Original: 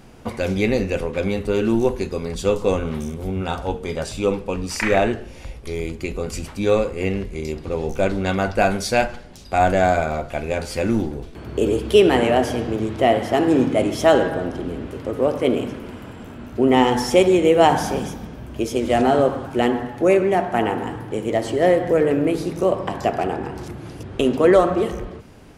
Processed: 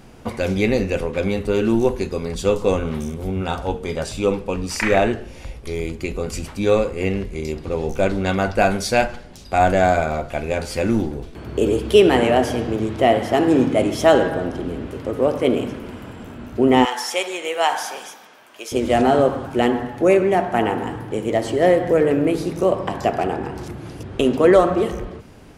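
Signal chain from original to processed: 16.85–18.72 s: high-pass 950 Hz 12 dB/octave; trim +1 dB

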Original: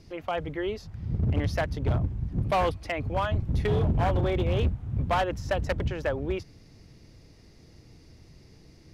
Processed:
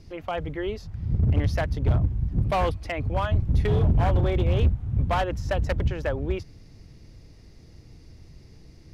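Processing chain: bass shelf 100 Hz +8.5 dB

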